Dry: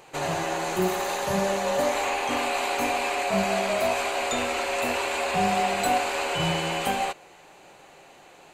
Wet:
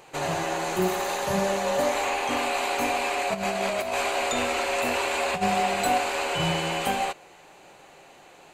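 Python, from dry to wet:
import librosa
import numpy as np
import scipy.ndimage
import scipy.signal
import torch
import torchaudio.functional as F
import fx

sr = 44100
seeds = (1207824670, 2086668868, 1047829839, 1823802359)

y = fx.over_compress(x, sr, threshold_db=-26.0, ratio=-0.5, at=(3.33, 5.41), fade=0.02)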